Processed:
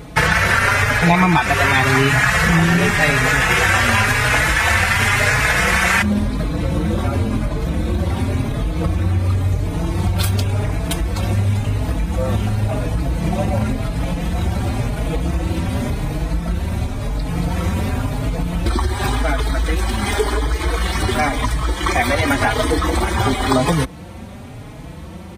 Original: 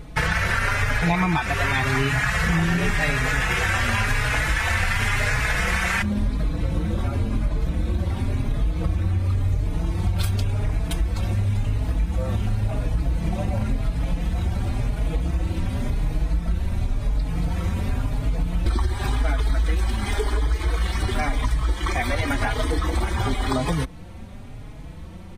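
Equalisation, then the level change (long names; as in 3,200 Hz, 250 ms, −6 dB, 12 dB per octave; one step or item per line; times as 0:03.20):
high-pass filter 48 Hz
spectral tilt +2 dB per octave
tilt shelving filter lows +4.5 dB, about 1,300 Hz
+7.5 dB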